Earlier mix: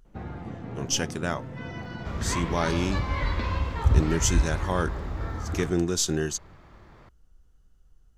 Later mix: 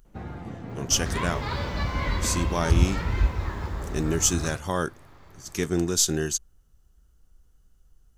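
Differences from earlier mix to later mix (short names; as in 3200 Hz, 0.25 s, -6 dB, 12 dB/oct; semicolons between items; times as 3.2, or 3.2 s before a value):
second sound: entry -1.15 s; master: add high shelf 7500 Hz +11 dB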